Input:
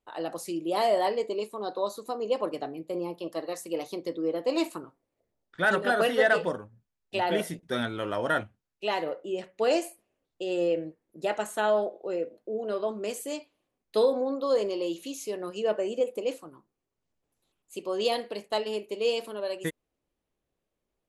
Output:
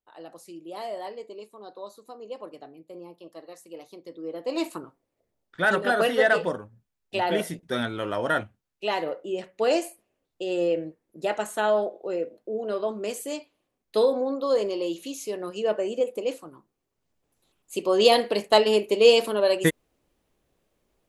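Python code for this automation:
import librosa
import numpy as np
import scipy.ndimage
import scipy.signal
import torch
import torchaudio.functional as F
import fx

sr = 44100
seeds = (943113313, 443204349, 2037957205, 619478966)

y = fx.gain(x, sr, db=fx.line((4.04, -10.0), (4.75, 2.0), (16.36, 2.0), (18.44, 11.0)))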